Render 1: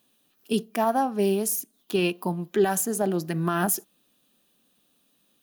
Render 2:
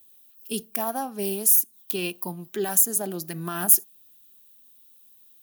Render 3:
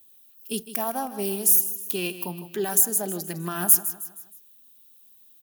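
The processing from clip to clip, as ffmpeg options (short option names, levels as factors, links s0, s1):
-af "aemphasis=mode=production:type=75fm,volume=0.501"
-af "aecho=1:1:157|314|471|628:0.224|0.101|0.0453|0.0204"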